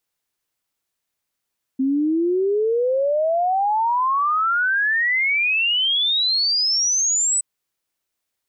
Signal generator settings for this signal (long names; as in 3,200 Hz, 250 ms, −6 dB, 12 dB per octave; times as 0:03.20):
exponential sine sweep 260 Hz → 8,100 Hz 5.62 s −16.5 dBFS